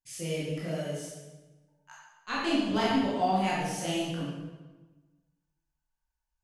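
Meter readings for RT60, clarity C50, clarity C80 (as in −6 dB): 1.2 s, −1.5 dB, 1.5 dB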